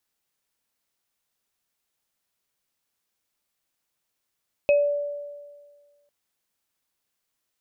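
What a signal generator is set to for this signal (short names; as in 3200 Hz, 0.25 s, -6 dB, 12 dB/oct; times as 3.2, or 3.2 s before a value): sine partials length 1.40 s, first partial 579 Hz, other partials 2550 Hz, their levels -9 dB, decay 1.66 s, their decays 0.24 s, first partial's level -14 dB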